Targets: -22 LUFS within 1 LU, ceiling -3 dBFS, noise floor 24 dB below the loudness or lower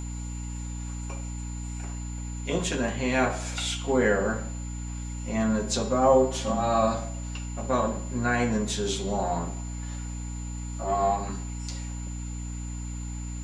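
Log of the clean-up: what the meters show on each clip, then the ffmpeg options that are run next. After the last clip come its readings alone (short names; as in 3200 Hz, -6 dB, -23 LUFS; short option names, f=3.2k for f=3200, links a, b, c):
hum 60 Hz; harmonics up to 300 Hz; hum level -32 dBFS; steady tone 7100 Hz; tone level -44 dBFS; loudness -28.5 LUFS; peak -8.0 dBFS; loudness target -22.0 LUFS
-> -af "bandreject=f=60:t=h:w=6,bandreject=f=120:t=h:w=6,bandreject=f=180:t=h:w=6,bandreject=f=240:t=h:w=6,bandreject=f=300:t=h:w=6"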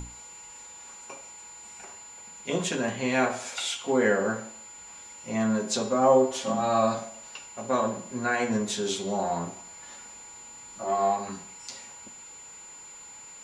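hum none; steady tone 7100 Hz; tone level -44 dBFS
-> -af "bandreject=f=7.1k:w=30"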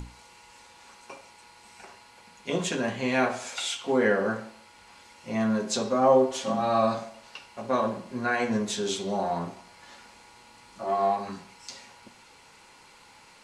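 steady tone none; loudness -27.0 LUFS; peak -9.0 dBFS; loudness target -22.0 LUFS
-> -af "volume=5dB"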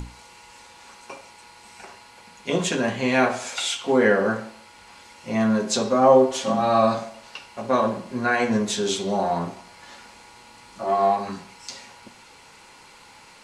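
loudness -22.0 LUFS; peak -4.0 dBFS; noise floor -49 dBFS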